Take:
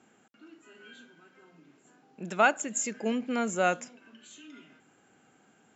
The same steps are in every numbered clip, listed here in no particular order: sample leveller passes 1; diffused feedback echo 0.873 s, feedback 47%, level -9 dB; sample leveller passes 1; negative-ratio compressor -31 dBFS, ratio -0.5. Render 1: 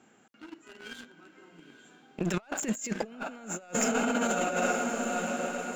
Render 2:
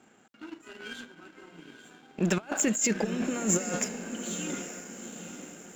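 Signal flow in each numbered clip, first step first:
first sample leveller > diffused feedback echo > second sample leveller > negative-ratio compressor; first sample leveller > negative-ratio compressor > diffused feedback echo > second sample leveller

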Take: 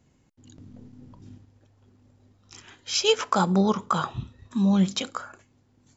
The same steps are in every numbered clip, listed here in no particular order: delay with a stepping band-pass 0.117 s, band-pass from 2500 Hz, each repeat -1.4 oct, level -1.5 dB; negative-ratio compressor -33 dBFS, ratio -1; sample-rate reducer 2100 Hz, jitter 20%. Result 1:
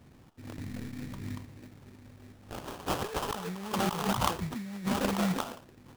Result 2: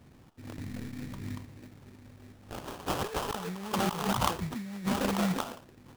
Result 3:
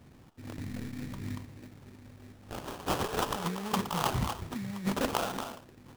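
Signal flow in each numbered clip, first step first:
delay with a stepping band-pass > negative-ratio compressor > sample-rate reducer; delay with a stepping band-pass > sample-rate reducer > negative-ratio compressor; negative-ratio compressor > delay with a stepping band-pass > sample-rate reducer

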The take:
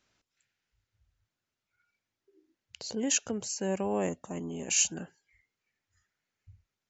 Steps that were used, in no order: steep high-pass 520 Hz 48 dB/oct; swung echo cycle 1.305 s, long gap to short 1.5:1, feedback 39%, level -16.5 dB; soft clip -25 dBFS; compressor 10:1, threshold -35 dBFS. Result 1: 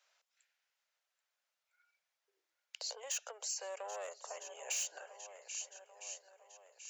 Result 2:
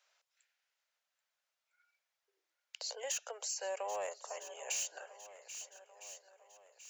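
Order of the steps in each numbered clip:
swung echo > soft clip > compressor > steep high-pass; steep high-pass > soft clip > swung echo > compressor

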